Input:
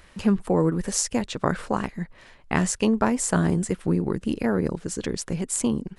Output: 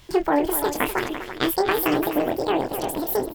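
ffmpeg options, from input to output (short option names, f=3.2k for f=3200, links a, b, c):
-filter_complex "[0:a]asplit=2[a][b];[b]aecho=0:1:43|448|609:0.501|0.299|0.316[c];[a][c]amix=inputs=2:normalize=0,asetrate=78939,aresample=44100,asplit=2[d][e];[e]asplit=3[f][g][h];[f]adelay=223,afreqshift=110,volume=-21.5dB[i];[g]adelay=446,afreqshift=220,volume=-28.6dB[j];[h]adelay=669,afreqshift=330,volume=-35.8dB[k];[i][j][k]amix=inputs=3:normalize=0[l];[d][l]amix=inputs=2:normalize=0"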